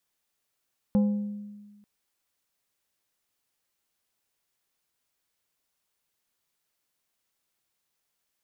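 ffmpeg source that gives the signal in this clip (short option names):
-f lavfi -i "aevalsrc='0.133*pow(10,-3*t/1.44)*sin(2*PI*206*t)+0.0376*pow(10,-3*t/0.758)*sin(2*PI*515*t)+0.0106*pow(10,-3*t/0.546)*sin(2*PI*824*t)+0.00299*pow(10,-3*t/0.467)*sin(2*PI*1030*t)+0.000841*pow(10,-3*t/0.388)*sin(2*PI*1339*t)':d=0.89:s=44100"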